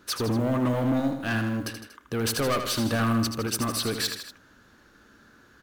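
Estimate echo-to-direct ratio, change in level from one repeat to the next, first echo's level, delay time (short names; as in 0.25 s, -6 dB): -6.5 dB, -4.5 dB, -8.0 dB, 79 ms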